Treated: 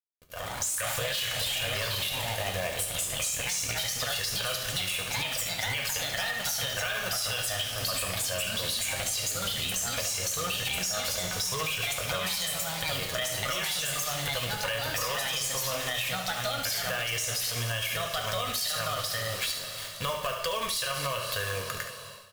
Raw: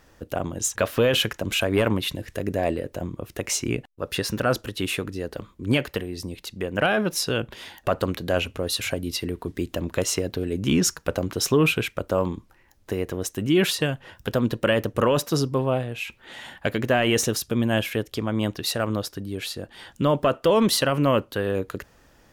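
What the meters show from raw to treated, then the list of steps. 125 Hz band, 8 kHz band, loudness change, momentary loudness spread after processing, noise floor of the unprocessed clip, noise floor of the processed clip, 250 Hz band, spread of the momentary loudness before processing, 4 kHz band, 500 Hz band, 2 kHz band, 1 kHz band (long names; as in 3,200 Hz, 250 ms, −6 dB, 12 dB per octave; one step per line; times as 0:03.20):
−10.0 dB, +1.5 dB, −4.0 dB, 3 LU, −58 dBFS, −38 dBFS, −20.0 dB, 12 LU, +1.0 dB, −12.0 dB, −2.0 dB, −4.0 dB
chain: guitar amp tone stack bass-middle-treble 10-0-10
log-companded quantiser 4 bits
dead-zone distortion −47 dBFS
comb filter 1.8 ms, depth 52%
delay with pitch and tempo change per echo 106 ms, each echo +2 semitones, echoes 3
coupled-rooms reverb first 0.28 s, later 4.1 s, from −20 dB, DRR 2 dB
brickwall limiter −23 dBFS, peak gain reduction 14 dB
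automatic gain control gain up to 16 dB
on a send: single-tap delay 71 ms −9.5 dB
on the sum: downward compressor, threshold −20 dBFS, peak gain reduction 7.5 dB
level −7.5 dB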